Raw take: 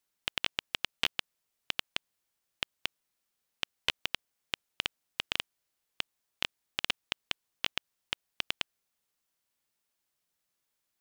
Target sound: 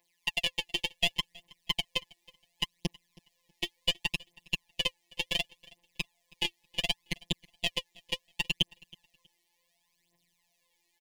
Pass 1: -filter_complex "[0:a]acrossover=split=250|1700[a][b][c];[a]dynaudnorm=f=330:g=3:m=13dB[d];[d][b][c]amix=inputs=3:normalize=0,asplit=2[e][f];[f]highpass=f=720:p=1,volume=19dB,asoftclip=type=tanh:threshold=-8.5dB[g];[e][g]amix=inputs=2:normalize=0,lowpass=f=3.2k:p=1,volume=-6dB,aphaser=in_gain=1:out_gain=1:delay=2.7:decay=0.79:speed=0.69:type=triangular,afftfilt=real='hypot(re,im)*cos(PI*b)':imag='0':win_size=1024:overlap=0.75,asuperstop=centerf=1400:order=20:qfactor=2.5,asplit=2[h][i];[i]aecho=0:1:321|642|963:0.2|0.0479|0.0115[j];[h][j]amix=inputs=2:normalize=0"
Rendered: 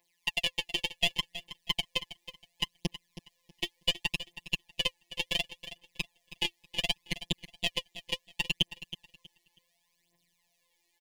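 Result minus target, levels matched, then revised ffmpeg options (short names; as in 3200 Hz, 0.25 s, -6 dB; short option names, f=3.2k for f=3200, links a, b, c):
echo-to-direct +6.5 dB
-filter_complex "[0:a]acrossover=split=250|1700[a][b][c];[a]dynaudnorm=f=330:g=3:m=13dB[d];[d][b][c]amix=inputs=3:normalize=0,asplit=2[e][f];[f]highpass=f=720:p=1,volume=19dB,asoftclip=type=tanh:threshold=-8.5dB[g];[e][g]amix=inputs=2:normalize=0,lowpass=f=3.2k:p=1,volume=-6dB,aphaser=in_gain=1:out_gain=1:delay=2.7:decay=0.79:speed=0.69:type=triangular,afftfilt=real='hypot(re,im)*cos(PI*b)':imag='0':win_size=1024:overlap=0.75,asuperstop=centerf=1400:order=20:qfactor=2.5,asplit=2[h][i];[i]aecho=0:1:321|642:0.0596|0.0143[j];[h][j]amix=inputs=2:normalize=0"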